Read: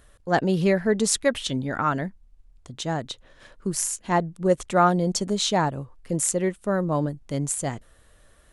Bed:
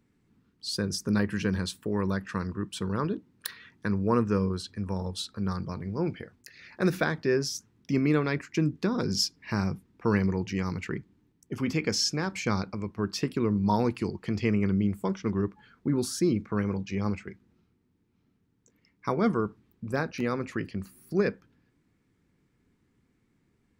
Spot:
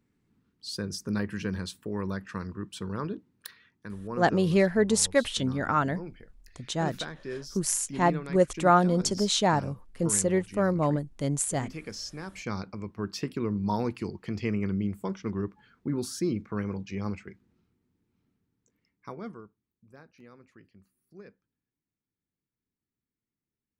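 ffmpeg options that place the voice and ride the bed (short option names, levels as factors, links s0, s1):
-filter_complex "[0:a]adelay=3900,volume=0.841[s0];[1:a]volume=1.58,afade=t=out:st=3.13:d=0.59:silence=0.421697,afade=t=in:st=12.09:d=0.72:silence=0.398107,afade=t=out:st=18.13:d=1.38:silence=0.105925[s1];[s0][s1]amix=inputs=2:normalize=0"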